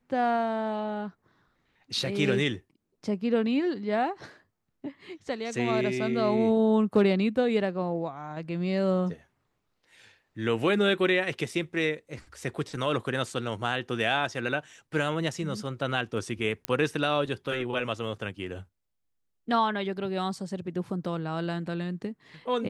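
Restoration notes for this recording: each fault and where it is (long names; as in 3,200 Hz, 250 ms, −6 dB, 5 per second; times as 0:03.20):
0:16.65: click −12 dBFS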